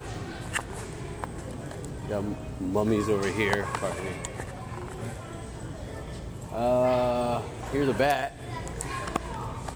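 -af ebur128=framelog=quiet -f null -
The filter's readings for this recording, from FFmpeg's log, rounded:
Integrated loudness:
  I:         -30.2 LUFS
  Threshold: -40.2 LUFS
Loudness range:
  LRA:         4.5 LU
  Threshold: -49.7 LUFS
  LRA low:   -32.4 LUFS
  LRA high:  -27.9 LUFS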